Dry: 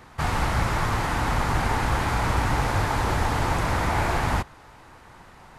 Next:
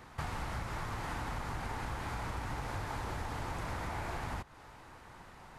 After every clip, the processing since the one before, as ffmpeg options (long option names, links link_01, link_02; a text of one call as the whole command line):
ffmpeg -i in.wav -af "acompressor=threshold=-30dB:ratio=10,volume=-5dB" out.wav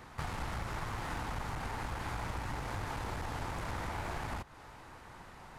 ffmpeg -i in.wav -af "aeval=exprs='clip(val(0),-1,0.0106)':channel_layout=same,volume=1.5dB" out.wav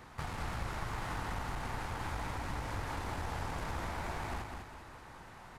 ffmpeg -i in.wav -af "aecho=1:1:203|406|609|812|1015:0.562|0.225|0.09|0.036|0.0144,volume=-1.5dB" out.wav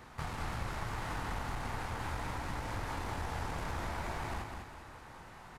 ffmpeg -i in.wav -filter_complex "[0:a]asplit=2[link_01][link_02];[link_02]adelay=26,volume=-10.5dB[link_03];[link_01][link_03]amix=inputs=2:normalize=0" out.wav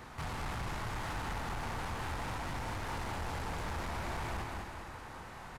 ffmpeg -i in.wav -af "asoftclip=type=tanh:threshold=-38.5dB,aecho=1:1:264:0.335,volume=4dB" out.wav